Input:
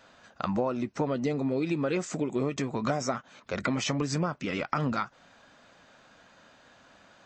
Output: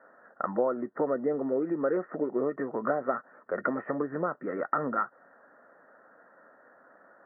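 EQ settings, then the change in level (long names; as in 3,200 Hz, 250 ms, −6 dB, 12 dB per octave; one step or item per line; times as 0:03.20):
high-pass filter 280 Hz 12 dB per octave
Chebyshev low-pass with heavy ripple 1,900 Hz, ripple 6 dB
+4.0 dB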